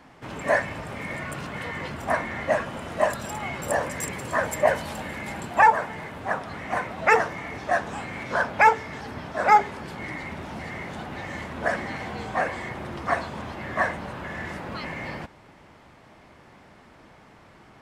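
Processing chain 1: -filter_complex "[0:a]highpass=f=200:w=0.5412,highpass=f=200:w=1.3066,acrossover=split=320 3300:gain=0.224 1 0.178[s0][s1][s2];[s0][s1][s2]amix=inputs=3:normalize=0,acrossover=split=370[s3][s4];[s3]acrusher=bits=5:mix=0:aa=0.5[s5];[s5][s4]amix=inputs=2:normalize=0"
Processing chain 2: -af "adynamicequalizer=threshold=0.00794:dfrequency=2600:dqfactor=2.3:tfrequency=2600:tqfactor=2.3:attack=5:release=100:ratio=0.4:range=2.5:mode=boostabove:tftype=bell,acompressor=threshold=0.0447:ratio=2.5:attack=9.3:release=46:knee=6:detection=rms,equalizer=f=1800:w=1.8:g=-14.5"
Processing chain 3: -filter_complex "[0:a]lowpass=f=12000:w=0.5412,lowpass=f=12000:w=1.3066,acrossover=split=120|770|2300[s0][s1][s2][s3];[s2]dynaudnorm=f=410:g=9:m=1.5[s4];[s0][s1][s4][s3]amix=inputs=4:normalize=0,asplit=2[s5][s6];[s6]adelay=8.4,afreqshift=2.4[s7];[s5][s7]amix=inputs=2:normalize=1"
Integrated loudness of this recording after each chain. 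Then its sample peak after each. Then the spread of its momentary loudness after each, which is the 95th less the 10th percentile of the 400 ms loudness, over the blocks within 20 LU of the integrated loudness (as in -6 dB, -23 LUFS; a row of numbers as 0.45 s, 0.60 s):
-27.0 LUFS, -34.0 LUFS, -27.5 LUFS; -6.0 dBFS, -16.0 dBFS, -4.5 dBFS; 18 LU, 23 LU, 15 LU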